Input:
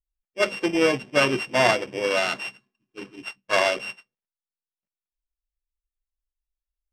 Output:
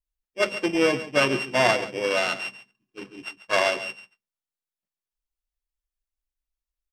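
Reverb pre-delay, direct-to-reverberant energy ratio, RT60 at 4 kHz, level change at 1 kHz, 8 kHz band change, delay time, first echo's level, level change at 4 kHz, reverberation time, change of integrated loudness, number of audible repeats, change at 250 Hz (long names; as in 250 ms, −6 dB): no reverb audible, no reverb audible, no reverb audible, −1.0 dB, −1.0 dB, 139 ms, −14.5 dB, −0.5 dB, no reverb audible, −1.0 dB, 1, −0.5 dB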